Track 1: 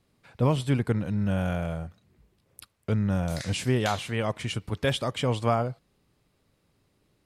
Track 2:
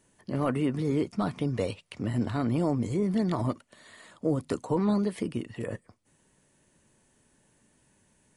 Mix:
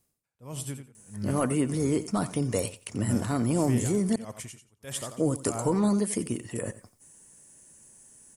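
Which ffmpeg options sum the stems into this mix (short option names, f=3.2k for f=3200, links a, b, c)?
-filter_complex "[0:a]aeval=exprs='val(0)*pow(10,-30*(0.5-0.5*cos(2*PI*1.6*n/s))/20)':c=same,volume=-7dB,asplit=2[a][b];[b]volume=-9dB[c];[1:a]adelay=950,volume=1dB,asplit=3[d][e][f];[d]atrim=end=4.16,asetpts=PTS-STARTPTS,afade=t=out:st=4.156:d=0.004:c=hsin[g];[e]atrim=start=4.16:end=4.91,asetpts=PTS-STARTPTS,volume=0[h];[f]atrim=start=4.91,asetpts=PTS-STARTPTS,afade=t=in:d=0.004:c=hsin[i];[g][h][i]concat=n=3:v=0:a=1,asplit=2[j][k];[k]volume=-15.5dB[l];[c][l]amix=inputs=2:normalize=0,aecho=0:1:88|176|264:1|0.16|0.0256[m];[a][j][m]amix=inputs=3:normalize=0,aexciter=amount=7.3:drive=3:freq=5.6k"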